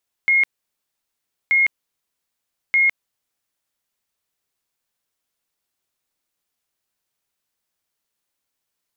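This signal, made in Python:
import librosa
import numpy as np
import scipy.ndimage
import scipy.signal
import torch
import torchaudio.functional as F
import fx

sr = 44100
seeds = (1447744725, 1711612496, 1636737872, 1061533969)

y = fx.tone_burst(sr, hz=2150.0, cycles=335, every_s=1.23, bursts=3, level_db=-12.5)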